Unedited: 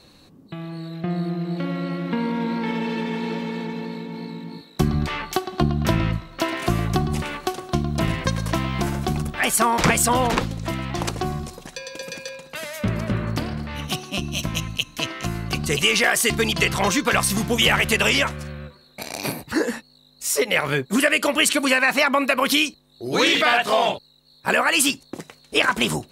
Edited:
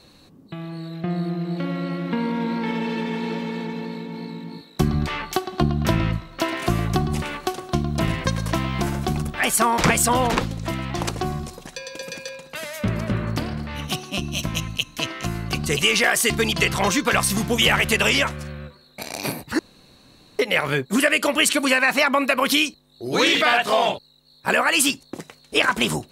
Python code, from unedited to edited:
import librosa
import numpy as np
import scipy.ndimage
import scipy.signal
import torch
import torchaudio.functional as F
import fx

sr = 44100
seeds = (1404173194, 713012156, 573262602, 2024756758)

y = fx.edit(x, sr, fx.room_tone_fill(start_s=19.59, length_s=0.8), tone=tone)